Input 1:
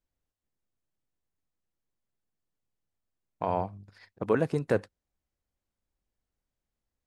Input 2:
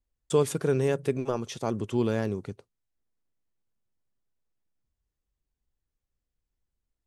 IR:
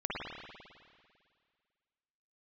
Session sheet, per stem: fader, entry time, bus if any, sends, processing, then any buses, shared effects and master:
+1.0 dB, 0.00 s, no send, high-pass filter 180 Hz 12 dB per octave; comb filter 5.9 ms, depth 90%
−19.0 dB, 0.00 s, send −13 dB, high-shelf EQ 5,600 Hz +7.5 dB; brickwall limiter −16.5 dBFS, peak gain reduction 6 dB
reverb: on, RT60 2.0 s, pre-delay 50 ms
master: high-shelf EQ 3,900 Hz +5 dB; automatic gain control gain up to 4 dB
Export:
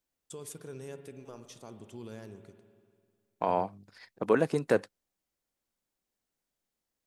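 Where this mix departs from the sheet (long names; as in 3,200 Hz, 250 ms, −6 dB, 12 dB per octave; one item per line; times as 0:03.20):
stem 1: missing comb filter 5.9 ms, depth 90%
master: missing automatic gain control gain up to 4 dB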